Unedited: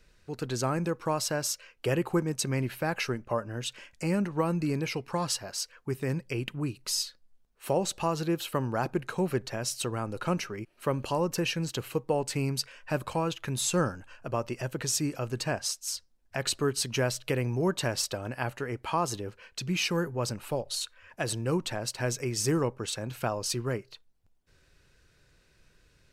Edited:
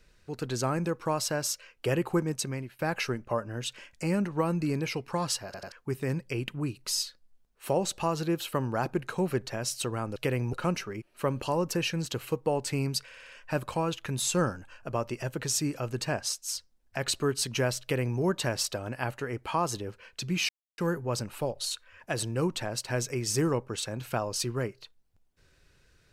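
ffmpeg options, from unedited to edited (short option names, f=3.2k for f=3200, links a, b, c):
-filter_complex "[0:a]asplit=12[a][b][c][d][e][f][g][h][i][j][k][l];[a]atrim=end=2.79,asetpts=PTS-STARTPTS,afade=t=out:st=2.32:d=0.47:silence=0.0668344[m];[b]atrim=start=2.79:end=5.542,asetpts=PTS-STARTPTS,afade=t=in:d=0.004:c=hsin:silence=0.0668344[n];[c]atrim=start=5.448:end=5.542[o];[d]atrim=start=5.448:end=5.542[p];[e]atrim=start=5.718:end=10.162[q];[f]atrim=start=17.208:end=17.582[r];[g]atrim=start=10.158:end=12.742[s];[h]atrim=start=12.678:end=12.742[t];[i]atrim=start=12.678:end=12.742[u];[j]atrim=start=12.678:end=12.742[v];[k]atrim=start=12.678:end=19.88,asetpts=PTS-STARTPTS,afade=t=out:st=7.198:d=0.004:c=hsin,apad=pad_dur=0.29[w];[l]atrim=start=19.88,asetpts=PTS-STARTPTS,afade=t=in:d=0.004:c=hsin[x];[m][n]concat=n=2:v=0:a=1[y];[y][o]acrossfade=d=0.004:c1=hsin:c2=hsin[z];[z][p]acrossfade=d=0.004:c1=hsin:c2=hsin[aa];[aa][q]acrossfade=d=0.004:c1=hsin:c2=hsin[ab];[ab][r]acrossfade=d=0.004:c1=hsin:c2=hsin[ac];[ac][s]acrossfade=d=0.004:c1=hsin:c2=hsin[ad];[ad][t]acrossfade=d=0.004:c1=hsin:c2=hsin[ae];[ae][u]acrossfade=d=0.004:c1=hsin:c2=hsin[af];[af][v]acrossfade=d=0.004:c1=hsin:c2=hsin[ag];[w][x]concat=n=2:v=0:a=1[ah];[ag][ah]acrossfade=d=0.004:c1=hsin:c2=hsin"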